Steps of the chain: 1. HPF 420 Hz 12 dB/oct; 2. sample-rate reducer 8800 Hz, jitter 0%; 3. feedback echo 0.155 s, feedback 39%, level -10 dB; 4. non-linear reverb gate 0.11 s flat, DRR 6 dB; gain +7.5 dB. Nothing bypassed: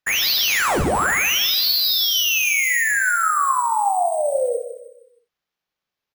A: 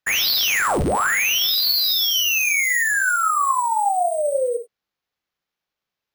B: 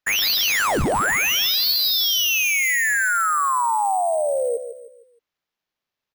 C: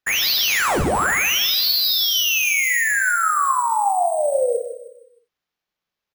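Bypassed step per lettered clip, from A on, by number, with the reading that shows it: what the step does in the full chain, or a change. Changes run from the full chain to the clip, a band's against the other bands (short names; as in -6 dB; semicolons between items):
3, echo-to-direct -4.0 dB to -6.0 dB; 4, echo-to-direct -4.0 dB to -9.5 dB; 1, momentary loudness spread change -1 LU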